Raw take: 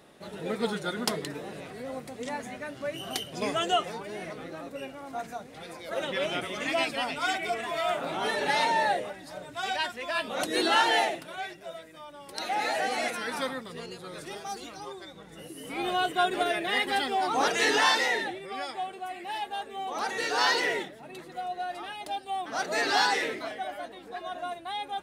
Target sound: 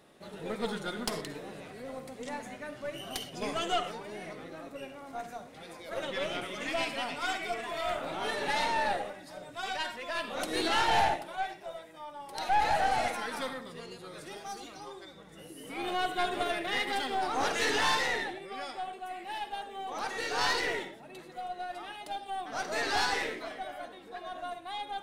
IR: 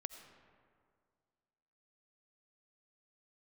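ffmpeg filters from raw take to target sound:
-filter_complex "[0:a]asettb=1/sr,asplit=3[a][b][c];[a]atrim=end=10.884[d];[b]atrim=start=10.88:end=13.26,asetpts=PTS-STARTPTS,afade=t=in:d=0.004:c=qsin,afade=t=out:st=2.376:d=0.004:c=qsin,equalizer=f=840:t=o:w=0.48:g=11[e];[c]atrim=start=13.256[f];[d][e]acrossfade=d=0.004:c1=hsin:c2=qsin[g];[g][f]acrossfade=d=0.004:c1=qsin:c2=hsin[h];[1:a]atrim=start_sample=2205,afade=t=out:st=0.27:d=0.01,atrim=end_sample=12348,asetrate=74970,aresample=44100[i];[h][i]afir=irnorm=-1:irlink=0,aeval=exprs='(tanh(25.1*val(0)+0.6)-tanh(0.6))/25.1':c=same,volume=7dB"

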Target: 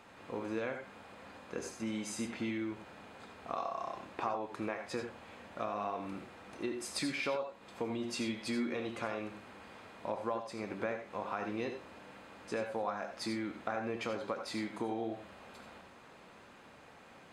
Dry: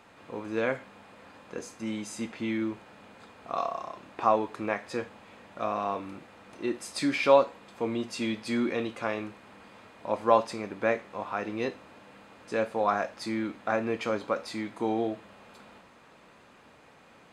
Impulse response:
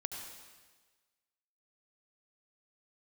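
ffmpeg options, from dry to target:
-filter_complex "[0:a]acompressor=threshold=-32dB:ratio=8[a];[1:a]atrim=start_sample=2205,atrim=end_sample=4410[b];[a][b]afir=irnorm=-1:irlink=0,volume=1dB"

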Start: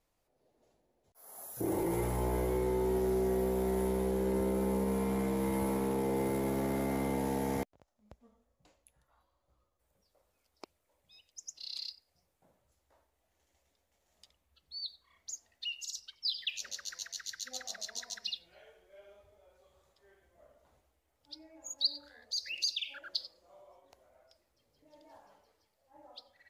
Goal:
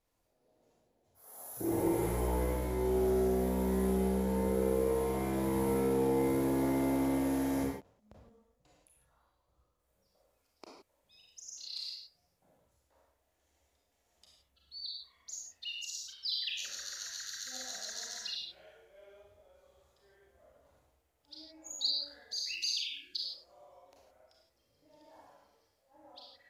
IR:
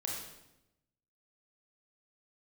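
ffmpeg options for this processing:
-filter_complex "[0:a]asettb=1/sr,asplit=3[a][b][c];[a]atrim=end=22.454[d];[b]atrim=start=22.45:end=23.24,asetpts=PTS-STARTPTS,afade=t=in:d=0.004:c=qsin,afade=t=out:st=0.786:d=0.004:c=qsin,asuperstop=centerf=910:order=12:qfactor=0.54[e];[c]atrim=start=23.236[f];[d][e]acrossfade=d=0.004:c1=hsin:c2=qsin[g];[g][f]acrossfade=d=0.004:c1=qsin:c2=hsin[h];[1:a]atrim=start_sample=2205,afade=t=out:st=0.2:d=0.01,atrim=end_sample=9261,asetrate=37926,aresample=44100[i];[h][i]afir=irnorm=-1:irlink=0,volume=-2dB"

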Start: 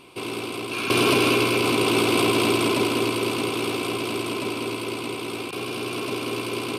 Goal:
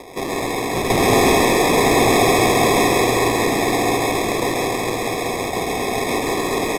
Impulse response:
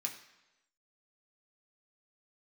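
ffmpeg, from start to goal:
-filter_complex "[0:a]equalizer=f=800:t=o:w=0.91:g=14.5,bandreject=f=60:t=h:w=6,bandreject=f=120:t=h:w=6,acrossover=split=230|950[a][b][c];[b]acompressor=mode=upward:threshold=-39dB:ratio=2.5[d];[a][d][c]amix=inputs=3:normalize=0,acrusher=samples=30:mix=1:aa=0.000001,asoftclip=type=tanh:threshold=-13dB,asplit=2[e][f];[1:a]atrim=start_sample=2205,adelay=133[g];[f][g]afir=irnorm=-1:irlink=0,volume=-0.5dB[h];[e][h]amix=inputs=2:normalize=0,aresample=32000,aresample=44100,volume=2.5dB"

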